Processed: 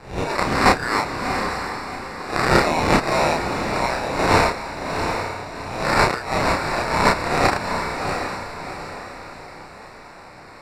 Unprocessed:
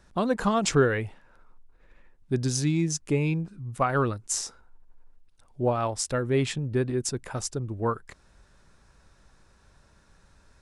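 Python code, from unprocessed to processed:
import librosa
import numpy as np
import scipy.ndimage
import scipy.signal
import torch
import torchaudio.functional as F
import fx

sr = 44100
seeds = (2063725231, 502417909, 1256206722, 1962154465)

p1 = fx.spec_swells(x, sr, rise_s=0.41)
p2 = scipy.signal.sosfilt(scipy.signal.butter(8, 2100.0, 'highpass', fs=sr, output='sos'), p1)
p3 = fx.peak_eq(p2, sr, hz=5500.0, db=9.5, octaves=0.38)
p4 = fx.over_compress(p3, sr, threshold_db=-39.0, ratio=-1.0)
p5 = p3 + (p4 * 10.0 ** (2.0 / 20.0))
p6 = fx.sample_hold(p5, sr, seeds[0], rate_hz=3200.0, jitter_pct=0)
p7 = fx.air_absorb(p6, sr, metres=65.0)
p8 = fx.doubler(p7, sr, ms=32.0, db=-2.0)
p9 = fx.echo_diffused(p8, sr, ms=729, feedback_pct=42, wet_db=-6.0)
y = p9 * 10.0 ** (7.0 / 20.0)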